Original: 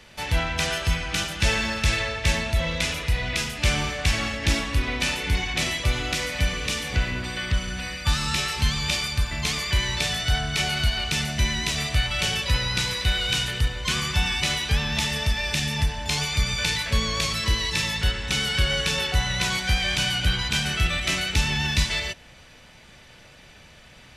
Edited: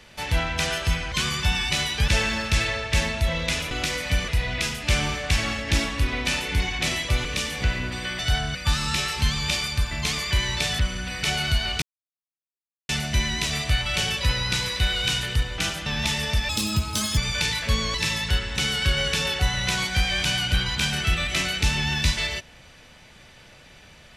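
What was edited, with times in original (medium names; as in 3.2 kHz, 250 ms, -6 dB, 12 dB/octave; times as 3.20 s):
1.12–1.40 s: swap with 13.83–14.79 s
6.00–6.57 s: move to 3.03 s
7.51–7.95 s: swap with 10.19–10.55 s
11.14 s: insert silence 1.07 s
15.42–16.41 s: speed 145%
17.18–17.67 s: delete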